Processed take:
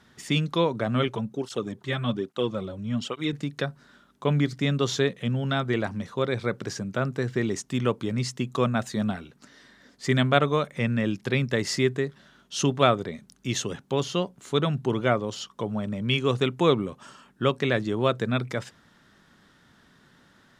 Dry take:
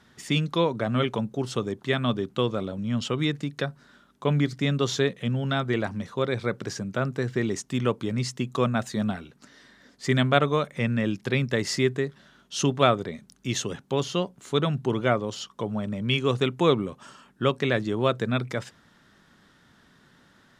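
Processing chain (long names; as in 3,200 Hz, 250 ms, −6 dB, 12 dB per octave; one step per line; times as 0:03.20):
0:01.08–0:03.33: through-zero flanger with one copy inverted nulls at 1.2 Hz, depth 4.8 ms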